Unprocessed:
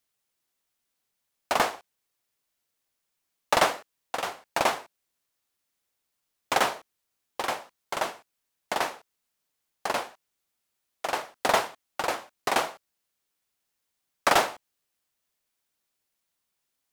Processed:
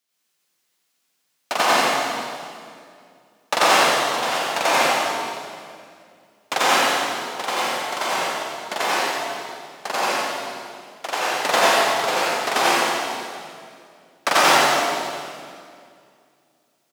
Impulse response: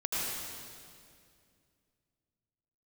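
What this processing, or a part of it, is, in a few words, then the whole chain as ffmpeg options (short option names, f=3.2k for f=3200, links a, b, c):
PA in a hall: -filter_complex "[0:a]highpass=f=130:w=0.5412,highpass=f=130:w=1.3066,equalizer=f=4k:t=o:w=2.4:g=4.5,aecho=1:1:90:0.501[a];[1:a]atrim=start_sample=2205[b];[a][b]afir=irnorm=-1:irlink=0"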